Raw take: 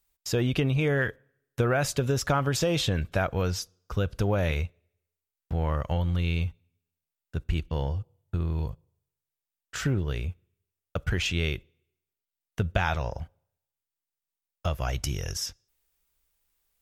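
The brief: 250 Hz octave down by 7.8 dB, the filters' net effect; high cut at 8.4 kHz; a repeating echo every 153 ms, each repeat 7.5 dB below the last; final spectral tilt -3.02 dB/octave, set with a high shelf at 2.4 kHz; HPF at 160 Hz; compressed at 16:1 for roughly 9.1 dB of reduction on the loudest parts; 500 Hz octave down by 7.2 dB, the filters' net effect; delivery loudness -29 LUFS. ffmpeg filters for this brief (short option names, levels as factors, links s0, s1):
-af "highpass=160,lowpass=8400,equalizer=f=250:t=o:g=-8,equalizer=f=500:t=o:g=-7,highshelf=f=2400:g=7.5,acompressor=threshold=0.0316:ratio=16,aecho=1:1:153|306|459|612|765:0.422|0.177|0.0744|0.0312|0.0131,volume=2.11"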